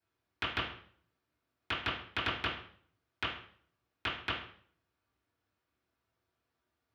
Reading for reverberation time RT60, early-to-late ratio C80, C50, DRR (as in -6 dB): 0.55 s, 9.5 dB, 5.0 dB, -12.0 dB